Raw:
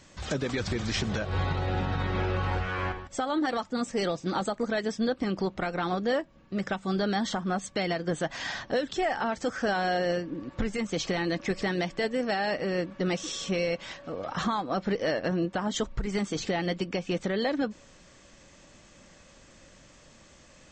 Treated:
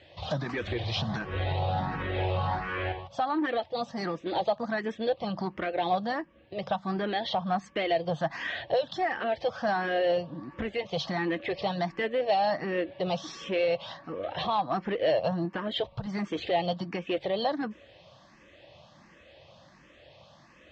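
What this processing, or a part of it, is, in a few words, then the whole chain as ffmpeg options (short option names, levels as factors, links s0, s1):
barber-pole phaser into a guitar amplifier: -filter_complex "[0:a]asplit=2[s0][s1];[s1]afreqshift=1.4[s2];[s0][s2]amix=inputs=2:normalize=1,asoftclip=type=tanh:threshold=0.0668,highpass=99,equalizer=f=190:t=q:w=4:g=-5,equalizer=f=260:t=q:w=4:g=-9,equalizer=f=410:t=q:w=4:g=-5,equalizer=f=680:t=q:w=4:g=4,equalizer=f=1400:t=q:w=4:g=-8,equalizer=f=2200:t=q:w=4:g=-4,lowpass=f=4000:w=0.5412,lowpass=f=4000:w=1.3066,volume=2"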